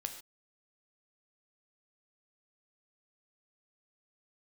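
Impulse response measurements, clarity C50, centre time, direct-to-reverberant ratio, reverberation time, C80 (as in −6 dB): 9.5 dB, 14 ms, 6.0 dB, non-exponential decay, 11.5 dB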